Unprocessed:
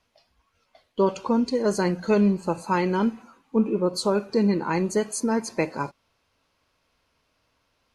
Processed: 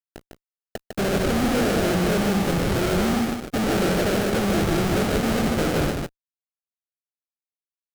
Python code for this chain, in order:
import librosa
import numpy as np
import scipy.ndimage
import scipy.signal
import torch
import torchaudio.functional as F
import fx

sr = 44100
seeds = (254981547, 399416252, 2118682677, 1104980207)

p1 = fx.hum_notches(x, sr, base_hz=60, count=5)
p2 = fx.sample_hold(p1, sr, seeds[0], rate_hz=1000.0, jitter_pct=20)
p3 = fx.fuzz(p2, sr, gain_db=48.0, gate_db=-54.0)
p4 = p3 + fx.echo_single(p3, sr, ms=152, db=-4.0, dry=0)
y = F.gain(torch.from_numpy(p4), -8.5).numpy()